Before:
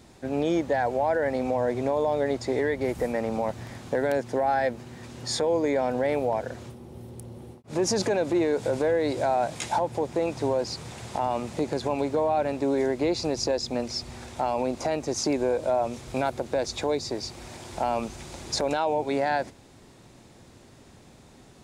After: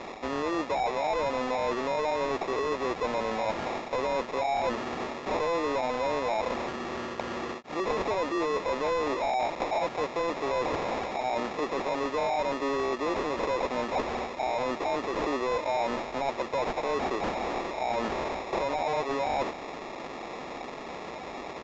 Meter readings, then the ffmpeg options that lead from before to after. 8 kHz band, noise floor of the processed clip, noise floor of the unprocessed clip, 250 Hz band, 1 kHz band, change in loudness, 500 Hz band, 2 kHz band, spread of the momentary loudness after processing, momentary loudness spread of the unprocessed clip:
−10.5 dB, −40 dBFS, −52 dBFS, −5.5 dB, +0.5 dB, −3.5 dB, −3.5 dB, +1.0 dB, 6 LU, 12 LU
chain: -filter_complex "[0:a]highshelf=frequency=3500:gain=11,acrusher=samples=29:mix=1:aa=0.000001,areverse,acompressor=threshold=-34dB:ratio=6,areverse,equalizer=frequency=110:width_type=o:width=0.92:gain=-11.5,asplit=2[link_01][link_02];[link_02]highpass=frequency=720:poles=1,volume=19dB,asoftclip=type=tanh:threshold=-25dB[link_03];[link_01][link_03]amix=inputs=2:normalize=0,lowpass=frequency=2500:poles=1,volume=-6dB,aresample=16000,aresample=44100,volume=5.5dB"

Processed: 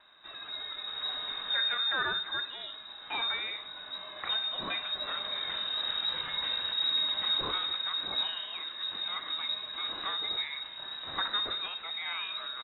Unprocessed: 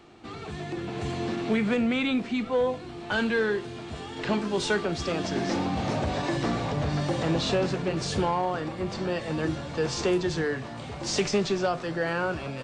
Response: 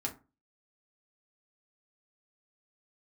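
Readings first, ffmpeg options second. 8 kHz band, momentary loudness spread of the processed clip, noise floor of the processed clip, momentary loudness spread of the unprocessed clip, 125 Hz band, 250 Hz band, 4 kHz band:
below −40 dB, 11 LU, −46 dBFS, 9 LU, −26.5 dB, −26.0 dB, +8.0 dB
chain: -af "firequalizer=gain_entry='entry(190,0);entry(400,-25);entry(2300,3)':delay=0.05:min_phase=1,aecho=1:1:62|124|186|248:0.2|0.0818|0.0335|0.0138,lowpass=frequency=3300:width_type=q:width=0.5098,lowpass=frequency=3300:width_type=q:width=0.6013,lowpass=frequency=3300:width_type=q:width=0.9,lowpass=frequency=3300:width_type=q:width=2.563,afreqshift=-3900,volume=-1.5dB"

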